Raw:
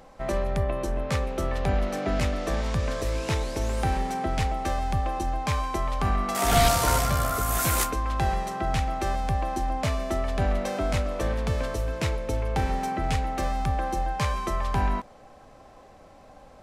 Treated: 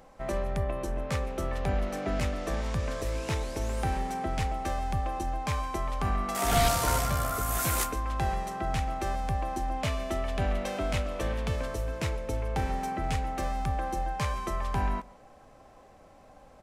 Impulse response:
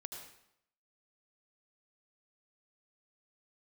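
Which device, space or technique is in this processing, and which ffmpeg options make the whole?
exciter from parts: -filter_complex "[0:a]asplit=2[a][b];[b]highpass=f=3.8k:w=0.5412,highpass=f=3.8k:w=1.3066,asoftclip=type=tanh:threshold=-37dB,volume=-11dB[c];[a][c]amix=inputs=2:normalize=0,asettb=1/sr,asplit=3[d][e][f];[d]atrim=end=9.734[g];[e]atrim=start=9.73:end=11.56,asetpts=PTS-STARTPTS,afade=t=in:d=0.004:c=qsin,afade=t=out:st=1.826:d=0.004:c=qsin,equalizer=f=3k:w=1.5:g=5[h];[f]atrim=start=11.556[i];[g][h]acrossfade=d=0.004:c1=hsin:c2=qsin[j];[j][i]acrossfade=d=0.004:c1=qsin:c2=hsin,aecho=1:1:144:0.0668,volume=-4dB"

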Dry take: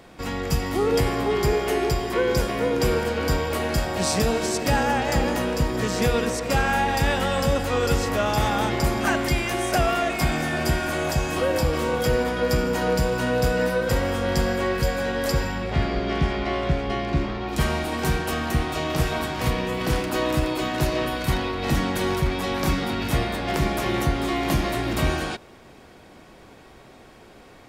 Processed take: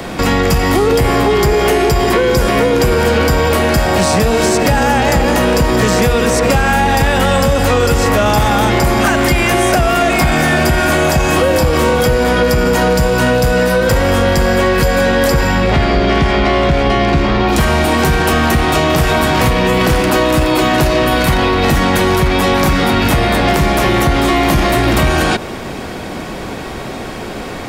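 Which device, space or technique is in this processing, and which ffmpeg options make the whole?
mastering chain: -filter_complex "[0:a]equalizer=f=200:t=o:w=0.77:g=2.5,acrossover=split=120|380|2900|6800[a][b][c][d][e];[a]acompressor=threshold=-24dB:ratio=4[f];[b]acompressor=threshold=-33dB:ratio=4[g];[c]acompressor=threshold=-26dB:ratio=4[h];[d]acompressor=threshold=-42dB:ratio=4[i];[e]acompressor=threshold=-39dB:ratio=4[j];[f][g][h][i][j]amix=inputs=5:normalize=0,acompressor=threshold=-27dB:ratio=3,asoftclip=type=tanh:threshold=-20.5dB,asoftclip=type=hard:threshold=-24dB,alimiter=level_in=27.5dB:limit=-1dB:release=50:level=0:latency=1,volume=-4.5dB"

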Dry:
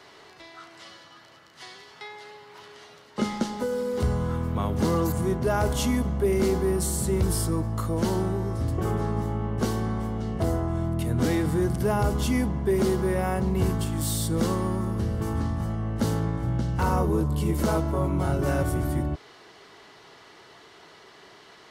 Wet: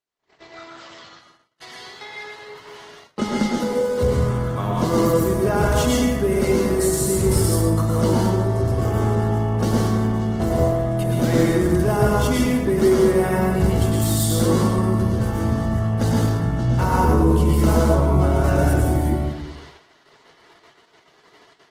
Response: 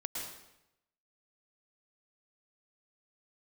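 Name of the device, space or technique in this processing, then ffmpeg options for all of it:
speakerphone in a meeting room: -filter_complex "[1:a]atrim=start_sample=2205[a];[0:a][a]afir=irnorm=-1:irlink=0,asplit=2[b][c];[c]adelay=100,highpass=300,lowpass=3.4k,asoftclip=type=hard:threshold=-18dB,volume=-8dB[d];[b][d]amix=inputs=2:normalize=0,dynaudnorm=f=170:g=3:m=3.5dB,agate=range=-41dB:threshold=-43dB:ratio=16:detection=peak,volume=1.5dB" -ar 48000 -c:a libopus -b:a 16k

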